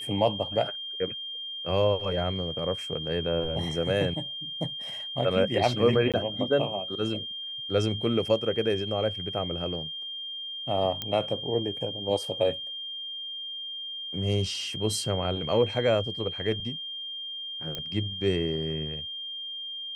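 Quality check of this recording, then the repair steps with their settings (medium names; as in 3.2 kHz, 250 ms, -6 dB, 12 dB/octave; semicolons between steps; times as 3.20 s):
whine 3.2 kHz -34 dBFS
6.12–6.14 s: dropout 17 ms
11.02 s: pop -16 dBFS
17.75 s: pop -18 dBFS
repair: de-click; band-stop 3.2 kHz, Q 30; interpolate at 6.12 s, 17 ms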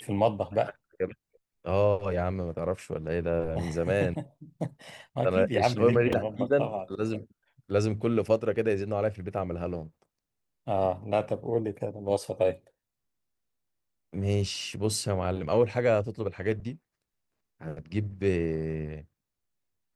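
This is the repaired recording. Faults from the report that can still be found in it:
nothing left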